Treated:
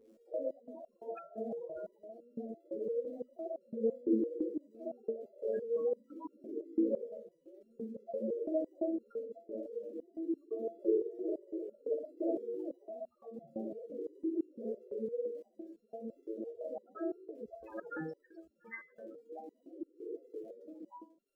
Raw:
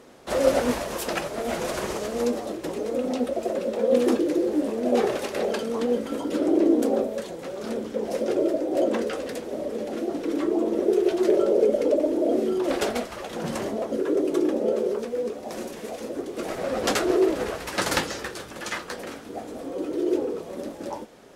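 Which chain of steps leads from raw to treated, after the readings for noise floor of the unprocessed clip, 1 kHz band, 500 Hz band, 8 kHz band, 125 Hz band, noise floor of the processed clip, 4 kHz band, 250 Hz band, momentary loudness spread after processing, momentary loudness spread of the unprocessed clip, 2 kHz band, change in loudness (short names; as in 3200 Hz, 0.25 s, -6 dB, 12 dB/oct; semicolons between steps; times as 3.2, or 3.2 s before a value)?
-40 dBFS, -20.5 dB, -14.0 dB, under -40 dB, under -15 dB, -73 dBFS, under -40 dB, -13.5 dB, 16 LU, 13 LU, under -20 dB, -14.0 dB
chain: notches 60/120/180/240/300 Hz; loudest bins only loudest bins 8; crackle 82/s -52 dBFS; stepped resonator 5.9 Hz 110–1400 Hz; gain +3 dB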